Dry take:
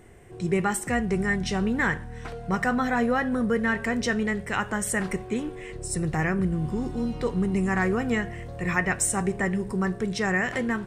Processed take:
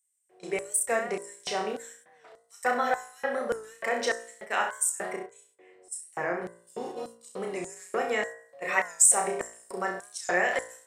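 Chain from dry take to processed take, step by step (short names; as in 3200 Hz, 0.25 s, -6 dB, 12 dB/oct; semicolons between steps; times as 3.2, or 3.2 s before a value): flutter echo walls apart 5.6 m, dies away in 0.45 s; gate -29 dBFS, range -14 dB; high shelf 2200 Hz +2 dB, from 4.9 s -7.5 dB, from 6.67 s +3.5 dB; LFO high-pass square 1.7 Hz 560–7900 Hz; bell 6900 Hz -2.5 dB; de-hum 57.75 Hz, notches 35; record warp 45 rpm, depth 100 cents; gain -3 dB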